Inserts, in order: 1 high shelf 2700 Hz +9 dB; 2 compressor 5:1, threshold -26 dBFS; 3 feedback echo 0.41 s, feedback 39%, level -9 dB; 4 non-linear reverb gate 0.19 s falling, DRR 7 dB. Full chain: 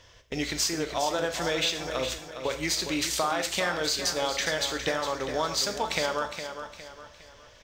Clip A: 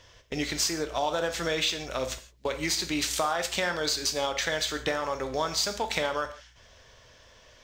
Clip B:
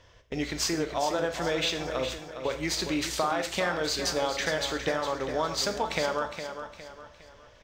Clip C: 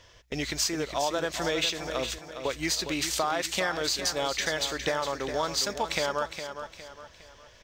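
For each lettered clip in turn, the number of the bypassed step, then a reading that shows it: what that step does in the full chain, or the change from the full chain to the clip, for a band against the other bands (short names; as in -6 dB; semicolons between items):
3, echo-to-direct -4.0 dB to -7.0 dB; 1, 8 kHz band -4.0 dB; 4, echo-to-direct -4.0 dB to -8.5 dB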